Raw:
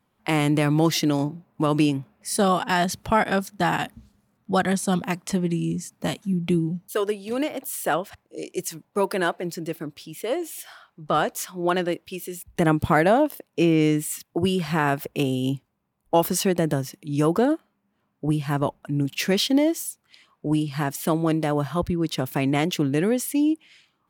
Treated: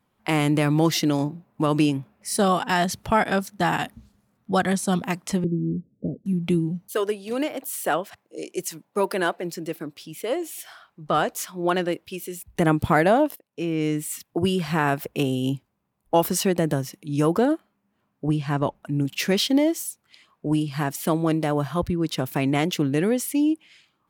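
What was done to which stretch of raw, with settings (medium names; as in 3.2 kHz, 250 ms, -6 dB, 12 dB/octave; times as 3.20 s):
5.44–6.26 s: steep low-pass 530 Hz 48 dB/octave
6.97–10.03 s: high-pass 160 Hz
13.36–14.26 s: fade in, from -18.5 dB
18.28–18.75 s: low-pass 7.3 kHz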